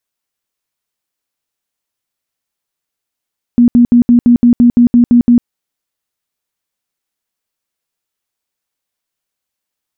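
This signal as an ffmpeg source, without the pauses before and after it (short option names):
-f lavfi -i "aevalsrc='0.708*sin(2*PI*240*mod(t,0.17))*lt(mod(t,0.17),24/240)':d=1.87:s=44100"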